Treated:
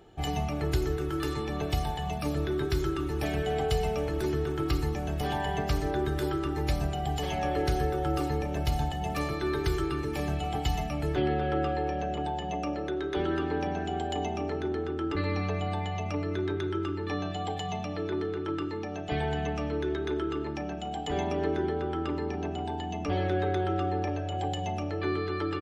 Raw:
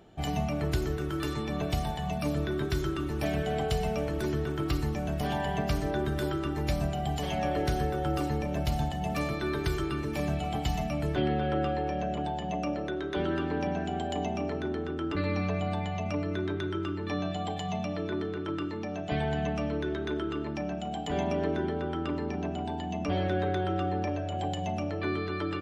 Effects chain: comb 2.4 ms, depth 43%

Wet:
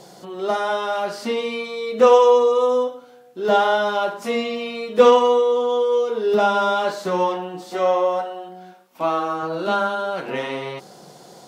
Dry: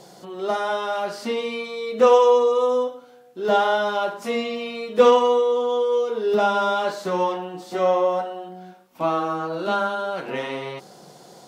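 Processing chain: 7.71–9.43 low shelf 200 Hz -10.5 dB; gain +2 dB

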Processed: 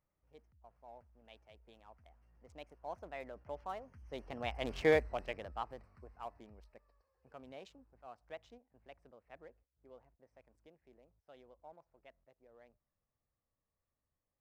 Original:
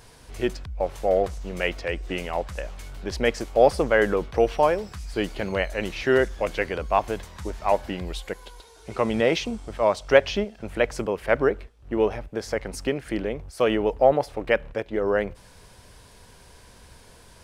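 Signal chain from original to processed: Wiener smoothing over 15 samples; Doppler pass-by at 5.84, 12 m/s, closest 2.8 m; varispeed +21%; gain -7 dB

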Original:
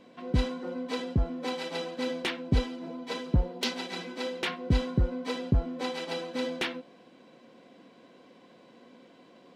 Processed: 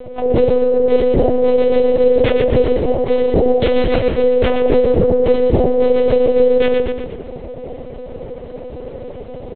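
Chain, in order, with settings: band shelf 520 Hz +16 dB 1.2 oct; notch 640 Hz, Q 12; de-hum 186.3 Hz, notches 7; in parallel at -2.5 dB: negative-ratio compressor -27 dBFS, ratio -0.5; on the sum: harmoniser -7 st -5 dB, -4 st -15 dB, +5 st -17 dB; on a send: frequency-shifting echo 0.123 s, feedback 46%, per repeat -30 Hz, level -5 dB; on the sum: monotone LPC vocoder at 8 kHz 250 Hz; gain +4.5 dB

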